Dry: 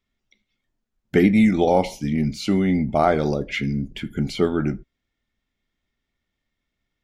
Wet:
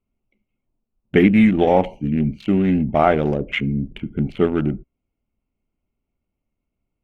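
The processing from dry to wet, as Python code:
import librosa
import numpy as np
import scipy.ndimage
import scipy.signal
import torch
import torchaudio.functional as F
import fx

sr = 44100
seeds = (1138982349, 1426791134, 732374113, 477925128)

y = fx.wiener(x, sr, points=25)
y = fx.high_shelf_res(y, sr, hz=3600.0, db=-7.0, q=3.0)
y = F.gain(torch.from_numpy(y), 2.5).numpy()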